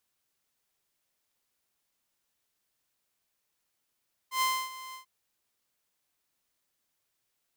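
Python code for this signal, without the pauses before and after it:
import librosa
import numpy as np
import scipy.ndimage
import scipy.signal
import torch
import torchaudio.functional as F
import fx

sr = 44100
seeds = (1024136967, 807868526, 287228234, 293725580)

y = fx.adsr_tone(sr, wave='saw', hz=1040.0, attack_ms=105.0, decay_ms=276.0, sustain_db=-17.0, held_s=0.63, release_ms=112.0, level_db=-21.5)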